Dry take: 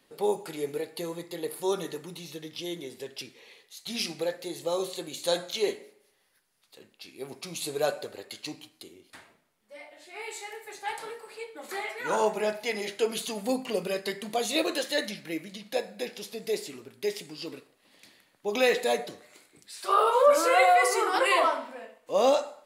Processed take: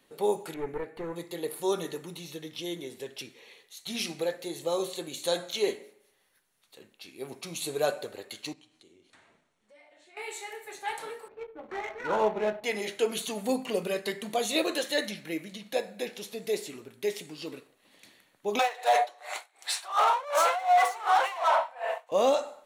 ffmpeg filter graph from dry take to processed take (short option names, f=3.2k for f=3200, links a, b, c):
-filter_complex "[0:a]asettb=1/sr,asplit=3[a][b][c];[a]atrim=end=0.544[d];[b]atrim=start=0.54:end=1.16,asetpts=PTS-STARTPTS,afade=t=in:d=0.004:c=qsin,afade=t=out:st=0.616:d=0.004:c=qsin,acrossover=split=5800[e][f];[f]acompressor=threshold=-57dB:ratio=4:attack=1:release=60[g];[e][g]amix=inputs=2:normalize=0,aeval=exprs='clip(val(0),-1,0.0141)':c=same,highshelf=f=2.6k:t=q:w=1.5:g=-12[h];[c]atrim=start=1.156[i];[d][h]acrossfade=d=0.004:c1=hsin:c2=qsin[j];[j][i]acrossfade=d=0.004:c1=qsin:c2=hsin,asettb=1/sr,asplit=3[k][l][m];[k]atrim=end=8.534[n];[l]atrim=start=8.53:end=10.17,asetpts=PTS-STARTPTS,afade=t=in:d=0.004:c=qsin,afade=t=out:st=1.636:d=0.004:c=qsin,acompressor=threshold=-59dB:ratio=2.5:attack=3.2:release=140:knee=1:detection=peak,lowpass=f=8.8k:w=0.5412,lowpass=f=8.8k:w=1.3066[o];[m]atrim=start=10.166[p];[n][o]acrossfade=d=0.004:c1=hsin:c2=qsin[q];[q][p]acrossfade=d=0.004:c1=qsin:c2=hsin,asettb=1/sr,asplit=3[r][s][t];[r]atrim=end=11.284[u];[s]atrim=start=11.28:end=12.64,asetpts=PTS-STARTPTS,afade=t=in:d=0.004:c=qsin,afade=t=out:st=1.356:d=0.004:c=qsin,aeval=exprs='val(0)+0.01*sin(2*PI*12000*n/s)':c=same,adynamicsmooth=sensitivity=6.5:basefreq=510,aemphasis=mode=reproduction:type=50kf[v];[t]atrim=start=12.636[w];[u][v]acrossfade=d=0.004:c1=hsin:c2=qsin[x];[x][w]acrossfade=d=0.004:c1=qsin:c2=hsin,asettb=1/sr,asplit=3[y][z][aa];[y]atrim=end=18.594[ab];[z]atrim=start=18.59:end=22.12,asetpts=PTS-STARTPTS,afade=t=in:d=0.004:c=qsin,afade=t=out:st=3.526:d=0.004:c=qsin,asplit=2[ac][ad];[ad]highpass=f=720:p=1,volume=27dB,asoftclip=type=tanh:threshold=-9dB[ae];[ac][ae]amix=inputs=2:normalize=0,lowpass=f=4.8k:p=1,volume=-6dB,highpass=f=760:t=q:w=4,aeval=exprs='val(0)*pow(10,-27*(0.5-0.5*cos(2*PI*2.7*n/s))/20)':c=same[af];[aa]atrim=start=22.116[ag];[ab][af]acrossfade=d=0.004:c1=hsin:c2=qsin[ah];[ah][ag]acrossfade=d=0.004:c1=qsin:c2=hsin,bandreject=f=4.9k:w=7.4,alimiter=limit=-14.5dB:level=0:latency=1:release=229"